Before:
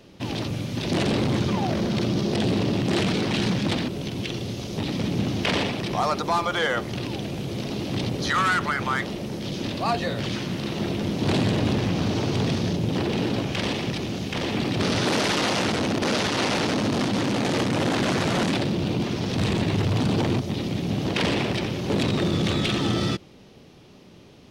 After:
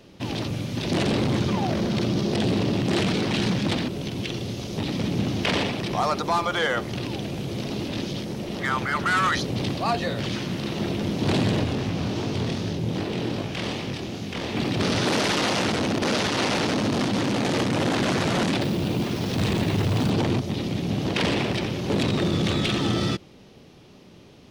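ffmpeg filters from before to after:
ffmpeg -i in.wav -filter_complex "[0:a]asplit=3[link_01][link_02][link_03];[link_01]afade=type=out:start_time=11.63:duration=0.02[link_04];[link_02]flanger=delay=18.5:depth=7.4:speed=2.6,afade=type=in:start_time=11.63:duration=0.02,afade=type=out:start_time=14.55:duration=0.02[link_05];[link_03]afade=type=in:start_time=14.55:duration=0.02[link_06];[link_04][link_05][link_06]amix=inputs=3:normalize=0,asettb=1/sr,asplit=3[link_07][link_08][link_09];[link_07]atrim=end=18.614[link_10];[link_08]atrim=start=18.61:end=20.1,asetpts=PTS-STARTPTS,afade=type=in:duration=0.004:curve=qsin,afade=type=out:start_time=1.486:duration=0.004:curve=qsin,acrusher=bits=8:dc=4:mix=0:aa=0.000001[link_11];[link_09]atrim=start=20.096[link_12];[link_10][link_11]acrossfade=duration=0.004:curve1=hsin:curve2=qsin[link_13];[link_13][link_12]acrossfade=duration=0.004:curve1=qsin:curve2=hsin,asplit=3[link_14][link_15][link_16];[link_14]atrim=end=7.882[link_17];[link_15]atrim=start=7.878:end=9.772,asetpts=PTS-STARTPTS,areverse[link_18];[link_16]atrim=start=9.768[link_19];[link_17][link_18]acrossfade=duration=0.004:curve1=hsin:curve2=hsin[link_20];[link_20][link_19]acrossfade=duration=0.004:curve1=hsin:curve2=hsin" out.wav

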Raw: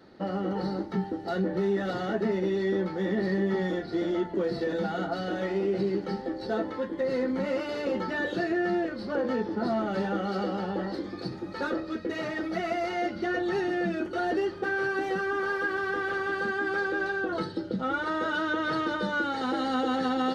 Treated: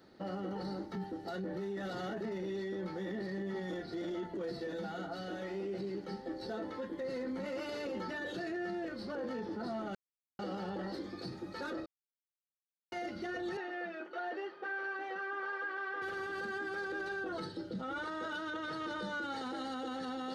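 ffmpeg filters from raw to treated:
ffmpeg -i in.wav -filter_complex "[0:a]asettb=1/sr,asplit=3[link_01][link_02][link_03];[link_01]atrim=end=13.574[link_04];[link_02]atrim=start=13.57:end=16.02,asetpts=PTS-STARTPTS,afade=type=in:duration=0.004:curve=qsin,afade=type=out:start_time=2.446:duration=0.004:curve=qsin,highpass=560,lowpass=2600[link_05];[link_03]atrim=start=16.016[link_06];[link_04][link_05]acrossfade=duration=0.004:curve1=hsin:curve2=qsin[link_07];[link_07][link_06]acrossfade=duration=0.004:curve1=qsin:curve2=hsin,asplit=7[link_08][link_09][link_10][link_11][link_12][link_13][link_14];[link_08]atrim=end=4.522[link_15];[link_09]atrim=start=4.518:end=6.272,asetpts=PTS-STARTPTS,volume=-3dB[link_16];[link_10]atrim=start=6.268:end=9.95,asetpts=PTS-STARTPTS,afade=type=out:start_time=3.678:duration=0.004:curve=hsin[link_17];[link_11]atrim=start=9.95:end=10.39,asetpts=PTS-STARTPTS,volume=0[link_18];[link_12]atrim=start=10.39:end=11.86,asetpts=PTS-STARTPTS,afade=type=in:duration=0.004:curve=hsin,afade=type=out:start_time=1.466:duration=0.004:curve=hsin[link_19];[link_13]atrim=start=11.86:end=12.92,asetpts=PTS-STARTPTS,volume=0[link_20];[link_14]atrim=start=12.92,asetpts=PTS-STARTPTS,afade=type=in:duration=0.004:curve=hsin[link_21];[link_15][link_16]acrossfade=duration=0.004:curve1=hsin:curve2=hsin[link_22];[link_17][link_18][link_19][link_20][link_21]concat=n=5:v=0:a=1[link_23];[link_22][link_23]acrossfade=duration=0.004:curve1=hsin:curve2=hsin,highshelf=frequency=6000:gain=9.5,alimiter=level_in=1dB:limit=-24dB:level=0:latency=1:release=12,volume=-1dB,volume=-7dB" out.wav

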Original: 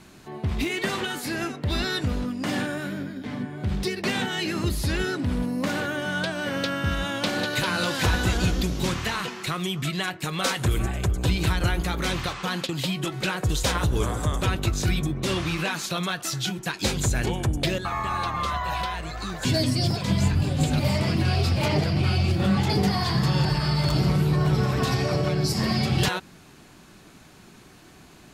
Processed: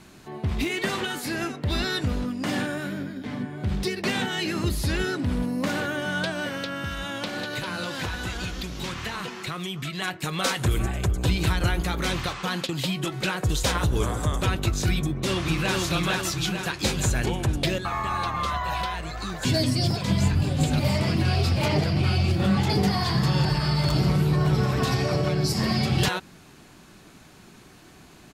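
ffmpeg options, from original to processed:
ffmpeg -i in.wav -filter_complex "[0:a]asettb=1/sr,asplit=3[link_01][link_02][link_03];[link_01]atrim=end=6.464[link_04];[link_02]atrim=start=6.46:end=10.02,asetpts=PTS-STARTPTS,afade=type=in:duration=0.004:curve=qsin,afade=type=out:start_time=3.556:duration=0.004:curve=qsin,acrossover=split=900|4800[link_05][link_06][link_07];[link_05]acompressor=threshold=-32dB:ratio=4[link_08];[link_06]acompressor=threshold=-33dB:ratio=4[link_09];[link_07]acompressor=threshold=-46dB:ratio=4[link_10];[link_08][link_09][link_10]amix=inputs=3:normalize=0[link_11];[link_03]atrim=start=10.016[link_12];[link_04][link_11]acrossfade=duration=0.004:curve1=hsin:curve2=qsin[link_13];[link_13][link_12]acrossfade=duration=0.004:curve1=qsin:curve2=hsin,asplit=2[link_14][link_15];[link_15]afade=type=in:start_time=15.01:duration=0.01,afade=type=out:start_time=15.76:duration=0.01,aecho=0:1:450|900|1350|1800|2250|2700|3150|3600:0.841395|0.462767|0.254522|0.139987|0.0769929|0.0423461|0.0232904|0.0128097[link_16];[link_14][link_16]amix=inputs=2:normalize=0" out.wav

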